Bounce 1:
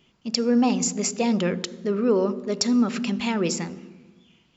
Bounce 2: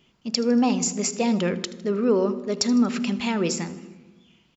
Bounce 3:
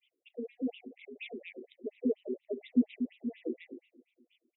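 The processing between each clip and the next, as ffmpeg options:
ffmpeg -i in.wav -af "aecho=1:1:78|156|234|312|390:0.112|0.0617|0.0339|0.0187|0.0103" out.wav
ffmpeg -i in.wav -af "asuperstop=centerf=1200:order=12:qfactor=0.87,asubboost=boost=7:cutoff=240,afftfilt=real='re*between(b*sr/1024,310*pow(2800/310,0.5+0.5*sin(2*PI*4.2*pts/sr))/1.41,310*pow(2800/310,0.5+0.5*sin(2*PI*4.2*pts/sr))*1.41)':imag='im*between(b*sr/1024,310*pow(2800/310,0.5+0.5*sin(2*PI*4.2*pts/sr))/1.41,310*pow(2800/310,0.5+0.5*sin(2*PI*4.2*pts/sr))*1.41)':win_size=1024:overlap=0.75,volume=-7dB" out.wav

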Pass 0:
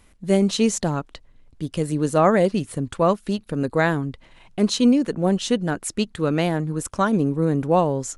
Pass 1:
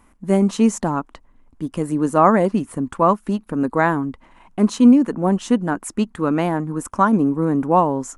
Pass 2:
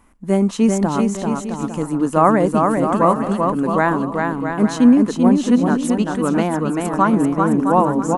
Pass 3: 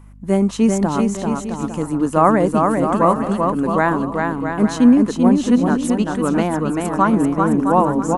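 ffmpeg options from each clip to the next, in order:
ffmpeg -i in.wav -af "equalizer=frequency=125:width_type=o:width=1:gain=-5,equalizer=frequency=250:width_type=o:width=1:gain=8,equalizer=frequency=500:width_type=o:width=1:gain=-3,equalizer=frequency=1000:width_type=o:width=1:gain=10,equalizer=frequency=4000:width_type=o:width=1:gain=-9,volume=-1dB" out.wav
ffmpeg -i in.wav -af "aecho=1:1:390|663|854.1|987.9|1082:0.631|0.398|0.251|0.158|0.1" out.wav
ffmpeg -i in.wav -af "aeval=exprs='val(0)+0.00891*(sin(2*PI*50*n/s)+sin(2*PI*2*50*n/s)/2+sin(2*PI*3*50*n/s)/3+sin(2*PI*4*50*n/s)/4+sin(2*PI*5*50*n/s)/5)':channel_layout=same" out.wav

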